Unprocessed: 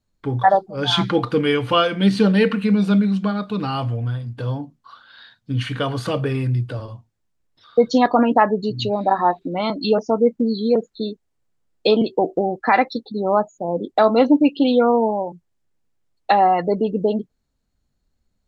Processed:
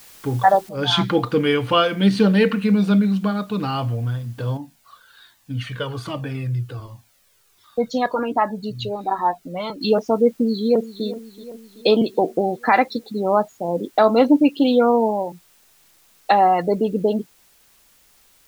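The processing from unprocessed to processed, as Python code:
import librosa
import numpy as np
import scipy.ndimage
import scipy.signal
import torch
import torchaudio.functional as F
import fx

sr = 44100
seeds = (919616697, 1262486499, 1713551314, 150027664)

y = fx.noise_floor_step(x, sr, seeds[0], at_s=0.69, before_db=-46, after_db=-56, tilt_db=0.0)
y = fx.comb_cascade(y, sr, direction='falling', hz=1.3, at=(4.57, 9.81))
y = fx.echo_throw(y, sr, start_s=10.37, length_s=0.68, ms=380, feedback_pct=60, wet_db=-15.5)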